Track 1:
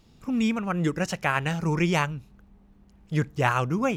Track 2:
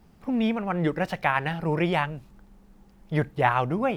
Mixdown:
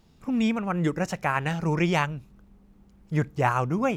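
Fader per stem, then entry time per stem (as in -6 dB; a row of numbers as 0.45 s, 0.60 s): -3.5 dB, -8.0 dB; 0.00 s, 0.00 s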